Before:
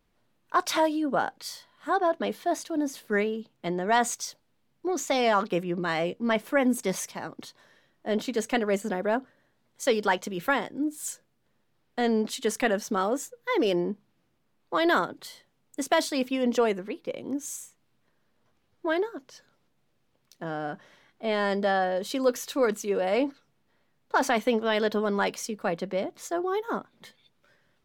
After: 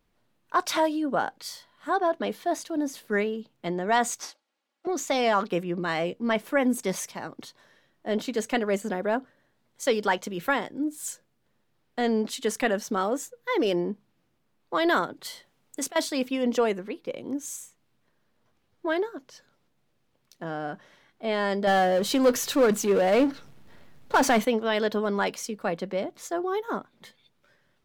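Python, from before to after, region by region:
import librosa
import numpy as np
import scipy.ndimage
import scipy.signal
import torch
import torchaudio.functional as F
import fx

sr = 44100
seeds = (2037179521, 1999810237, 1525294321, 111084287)

y = fx.chain(x, sr, fx.lower_of_two(delay_ms=3.6),
    fx.bandpass_edges(low_hz=500.0, high_hz=7600.0), at=(4.2, 4.87))
y = fx.chain(y, sr, fx.low_shelf(hz=380.0, db=-4.5),
    fx.over_compress(threshold_db=-33.0, ratio=-1.0), at=(15.25, 15.96))
y = fx.chain(y, sr, fx.low_shelf(hz=180.0, db=7.5),
    fx.power_curve(exponent=0.7), at=(21.67, 24.45))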